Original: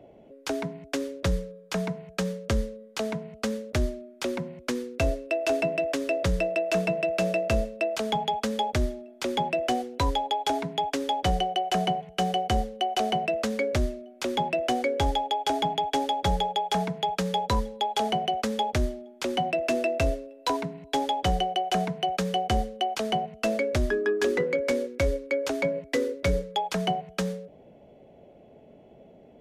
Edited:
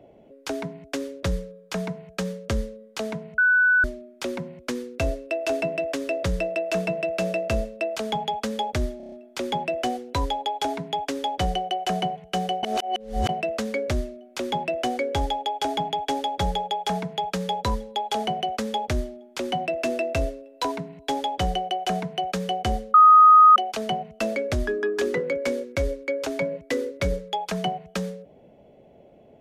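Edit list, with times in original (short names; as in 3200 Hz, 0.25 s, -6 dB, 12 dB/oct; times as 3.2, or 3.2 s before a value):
3.38–3.84 bleep 1490 Hz -15 dBFS
8.97 stutter 0.03 s, 6 plays
12.48–13.14 reverse
22.79 add tone 1250 Hz -8.5 dBFS 0.62 s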